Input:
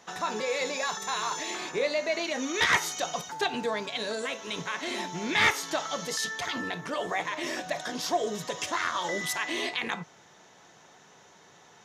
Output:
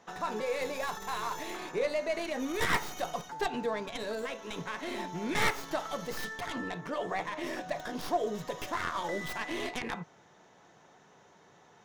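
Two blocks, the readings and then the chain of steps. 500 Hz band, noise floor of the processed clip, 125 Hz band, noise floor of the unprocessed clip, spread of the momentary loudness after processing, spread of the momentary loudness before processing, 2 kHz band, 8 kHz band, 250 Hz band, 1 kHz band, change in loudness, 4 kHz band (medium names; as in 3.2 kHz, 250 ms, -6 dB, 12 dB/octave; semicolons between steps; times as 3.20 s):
-2.0 dB, -60 dBFS, -0.5 dB, -56 dBFS, 7 LU, 9 LU, -6.5 dB, -10.0 dB, -1.5 dB, -3.0 dB, -5.0 dB, -9.0 dB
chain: tracing distortion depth 0.22 ms; treble shelf 2.1 kHz -9.5 dB; trim -1.5 dB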